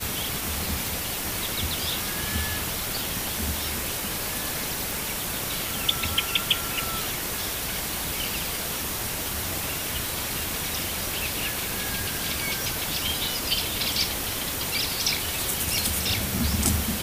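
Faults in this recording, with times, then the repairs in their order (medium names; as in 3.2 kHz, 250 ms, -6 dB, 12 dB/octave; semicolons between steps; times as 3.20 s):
0.87 s: pop
4.91 s: pop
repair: de-click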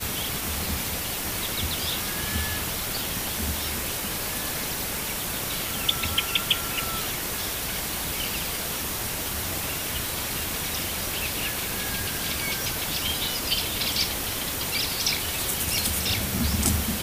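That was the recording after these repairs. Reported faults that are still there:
nothing left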